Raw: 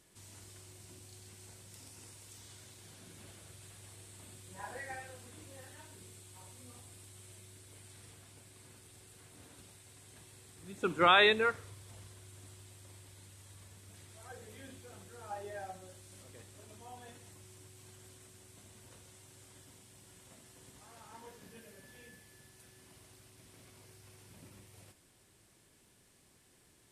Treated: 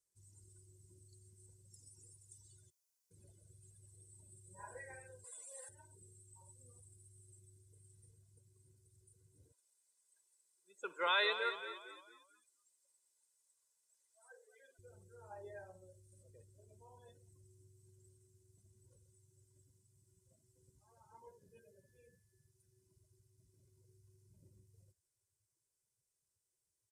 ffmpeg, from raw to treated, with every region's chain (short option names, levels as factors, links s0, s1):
-filter_complex "[0:a]asettb=1/sr,asplit=3[s0][s1][s2];[s0]atrim=end=2.704[s3];[s1]atrim=start=2.7:end=3.11,asetpts=PTS-STARTPTS,afade=t=in:d=0.004:c=qsin,afade=t=out:st=0.406:d=0.004:c=qsin,lowpass=5500,equalizer=f=1400:t=o:w=0.82:g=-8,aeval=exprs='(mod(1000*val(0)+1,2)-1)/1000':c=same[s4];[s2]atrim=start=3.106[s5];[s3][s4]acrossfade=d=0.004:c1=hsin:c2=qsin[s6];[s6][s5]acrossfade=d=0.004:c1=qsin:c2=hsin,asettb=1/sr,asplit=3[s7][s8][s9];[s7]atrim=end=5.244[s10];[s8]atrim=start=5.24:end=5.69,asetpts=PTS-STARTPTS,afade=t=in:d=0.004:c=qsin,afade=t=out:st=0.446:d=0.004:c=qsin,highpass=f=520:w=0.5412,highpass=f=520:w=1.3066,acontrast=39[s11];[s9]atrim=start=5.686[s12];[s10][s11]acrossfade=d=0.004:c1=hsin:c2=qsin[s13];[s13][s12]acrossfade=d=0.004:c1=qsin:c2=hsin,asettb=1/sr,asplit=3[s14][s15][s16];[s14]atrim=end=9.524[s17];[s15]atrim=start=9.52:end=14.79,asetpts=PTS-STARTPTS,afade=t=in:d=0.004:c=qsin,afade=t=out:st=5.266:d=0.004:c=qsin,highpass=590,highshelf=f=10000:g=-3,asplit=6[s18][s19][s20][s21][s22][s23];[s19]adelay=226,afreqshift=-37,volume=0.299[s24];[s20]adelay=452,afreqshift=-74,volume=0.138[s25];[s21]adelay=678,afreqshift=-111,volume=0.0631[s26];[s22]adelay=904,afreqshift=-148,volume=0.0292[s27];[s23]adelay=1130,afreqshift=-185,volume=0.0133[s28];[s18][s24][s25][s26][s27][s28]amix=inputs=6:normalize=0,atrim=end_sample=232407[s29];[s16]atrim=start=14.786[s30];[s17][s29]acrossfade=d=0.004:c1=hsin:c2=qsin[s31];[s31][s30]acrossfade=d=0.004:c1=qsin:c2=hsin,afftdn=nr=24:nf=-51,highshelf=f=4400:t=q:w=1.5:g=11,aecho=1:1:2:0.68,volume=0.376"